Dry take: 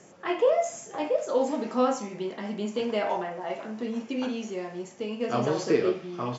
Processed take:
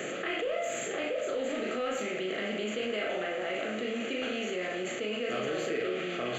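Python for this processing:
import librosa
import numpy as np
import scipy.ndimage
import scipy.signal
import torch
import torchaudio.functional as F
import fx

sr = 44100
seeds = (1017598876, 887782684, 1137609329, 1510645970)

p1 = fx.bin_compress(x, sr, power=0.6)
p2 = fx.highpass(p1, sr, hz=820.0, slope=6)
p3 = 10.0 ** (-28.0 / 20.0) * np.tanh(p2 / 10.0 ** (-28.0 / 20.0))
p4 = p2 + (p3 * 10.0 ** (-10.0 / 20.0))
p5 = fx.fixed_phaser(p4, sr, hz=2300.0, stages=4)
p6 = fx.doubler(p5, sr, ms=38.0, db=-5)
p7 = fx.env_flatten(p6, sr, amount_pct=70)
y = p7 * 10.0 ** (-6.5 / 20.0)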